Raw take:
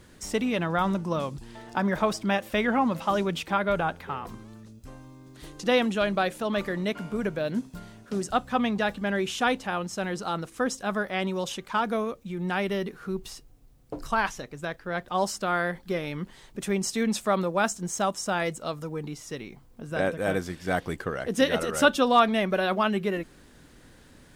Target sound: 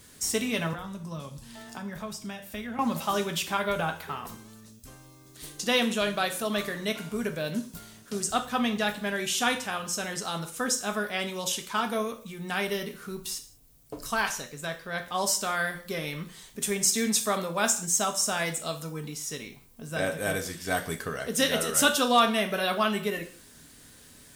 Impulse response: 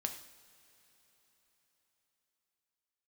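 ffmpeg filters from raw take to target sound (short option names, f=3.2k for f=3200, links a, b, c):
-filter_complex "[0:a]asettb=1/sr,asplit=3[a][b][c];[a]atrim=end=0.734[d];[b]atrim=start=0.73:end=2.79,asetpts=PTS-STARTPTS,afade=t=in:d=0.004:c=qsin,afade=t=out:st=2.056:d=0.004:c=qsin,acrossover=split=170[e][f];[f]acompressor=threshold=-40dB:ratio=3[g];[e][g]amix=inputs=2:normalize=0[h];[c]atrim=start=2.786[i];[d][h]acrossfade=d=0.004:c1=hsin:c2=qsin[j];[j][i]acrossfade=d=0.004:c1=qsin:c2=hsin,crystalizer=i=4:c=0[k];[1:a]atrim=start_sample=2205,afade=t=out:st=0.39:d=0.01,atrim=end_sample=17640,asetrate=74970,aresample=44100[l];[k][l]afir=irnorm=-1:irlink=0,volume=1dB"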